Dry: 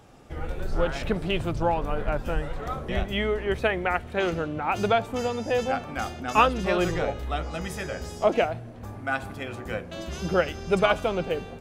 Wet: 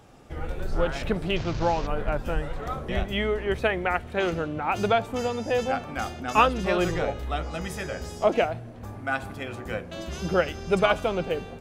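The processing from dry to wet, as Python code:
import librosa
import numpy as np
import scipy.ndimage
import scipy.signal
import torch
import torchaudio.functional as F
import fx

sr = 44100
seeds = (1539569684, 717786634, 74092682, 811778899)

y = fx.delta_mod(x, sr, bps=32000, step_db=-32.0, at=(1.36, 1.87))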